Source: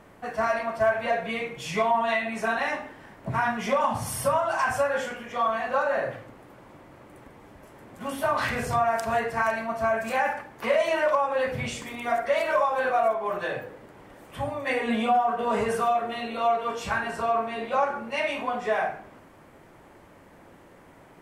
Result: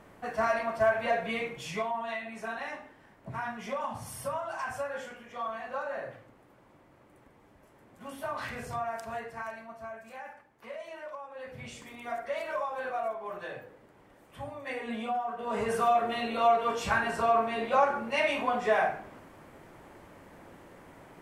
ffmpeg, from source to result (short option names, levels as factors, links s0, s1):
-af "volume=6.68,afade=t=out:st=1.48:d=0.42:silence=0.398107,afade=t=out:st=8.83:d=1.2:silence=0.375837,afade=t=in:st=11.35:d=0.49:silence=0.354813,afade=t=in:st=15.42:d=0.57:silence=0.316228"